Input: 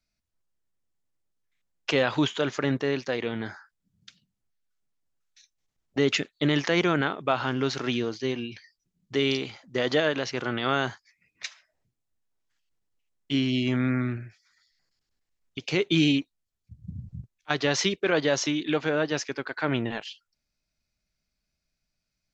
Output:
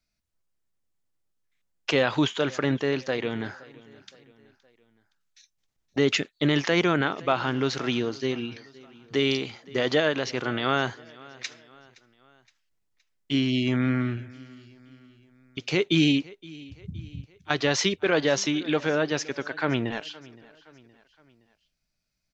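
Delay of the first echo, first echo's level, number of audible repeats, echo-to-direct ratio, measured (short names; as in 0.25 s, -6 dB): 0.518 s, -22.0 dB, 3, -21.0 dB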